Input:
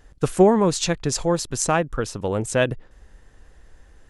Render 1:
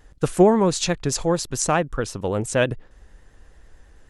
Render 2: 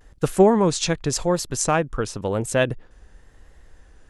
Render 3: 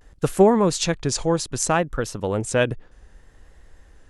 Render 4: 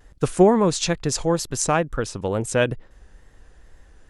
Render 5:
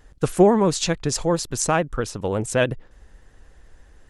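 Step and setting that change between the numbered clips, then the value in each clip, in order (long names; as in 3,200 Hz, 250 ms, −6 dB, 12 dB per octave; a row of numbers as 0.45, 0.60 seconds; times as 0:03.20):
pitch vibrato, speed: 9.1, 0.93, 0.63, 2.2, 14 Hertz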